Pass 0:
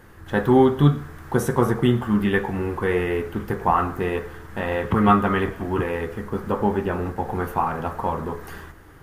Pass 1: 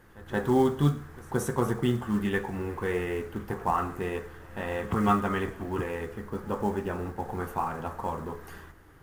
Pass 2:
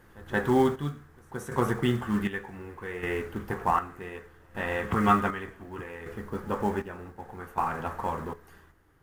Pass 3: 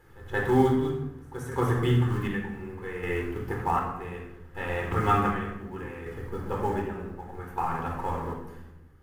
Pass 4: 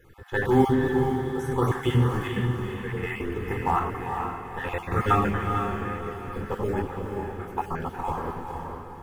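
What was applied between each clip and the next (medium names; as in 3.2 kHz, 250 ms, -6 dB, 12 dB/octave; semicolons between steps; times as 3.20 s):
short-mantissa float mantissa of 4-bit; dynamic bell 7.8 kHz, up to +6 dB, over -52 dBFS, Q 1.4; reverse echo 175 ms -21 dB; trim -7.5 dB
dynamic bell 1.9 kHz, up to +6 dB, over -46 dBFS, Q 0.96; square tremolo 0.66 Hz, depth 65%, duty 50%
simulated room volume 3300 m³, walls furnished, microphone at 4.1 m; trim -4 dB
random holes in the spectrogram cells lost 25%; echo that smears into a reverb 461 ms, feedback 41%, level -5 dB; trim +2 dB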